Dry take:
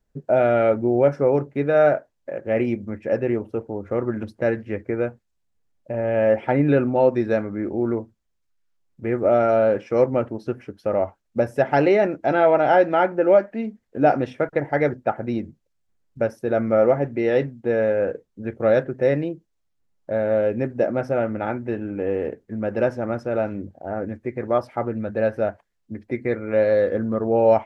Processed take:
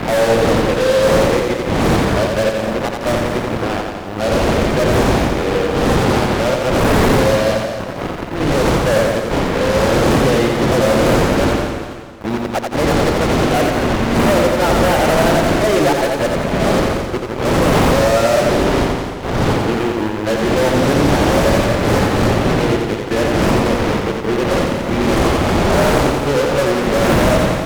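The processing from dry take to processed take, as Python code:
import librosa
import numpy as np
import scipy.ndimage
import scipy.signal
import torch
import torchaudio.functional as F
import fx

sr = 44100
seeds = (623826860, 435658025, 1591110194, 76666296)

p1 = x[::-1].copy()
p2 = fx.dmg_wind(p1, sr, seeds[0], corner_hz=460.0, level_db=-18.0)
p3 = fx.quant_float(p2, sr, bits=4)
p4 = p2 + (p3 * 10.0 ** (-3.0 / 20.0))
p5 = fx.fuzz(p4, sr, gain_db=23.0, gate_db=-21.0)
p6 = fx.echo_feedback(p5, sr, ms=87, feedback_pct=60, wet_db=-4)
y = fx.echo_warbled(p6, sr, ms=222, feedback_pct=40, rate_hz=2.8, cents=131, wet_db=-11.0)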